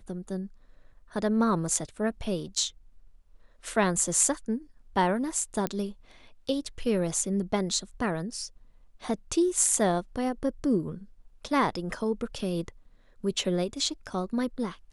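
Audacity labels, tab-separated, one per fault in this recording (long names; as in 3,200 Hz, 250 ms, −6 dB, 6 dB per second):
5.670000	5.670000	click −14 dBFS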